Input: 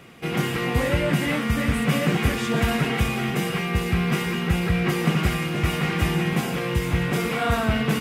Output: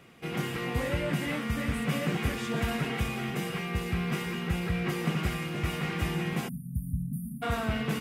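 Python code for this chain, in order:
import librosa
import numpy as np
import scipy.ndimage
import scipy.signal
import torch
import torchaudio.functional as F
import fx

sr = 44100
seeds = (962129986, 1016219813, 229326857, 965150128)

y = fx.spec_erase(x, sr, start_s=6.48, length_s=0.95, low_hz=260.0, high_hz=9000.0)
y = y * 10.0 ** (-8.0 / 20.0)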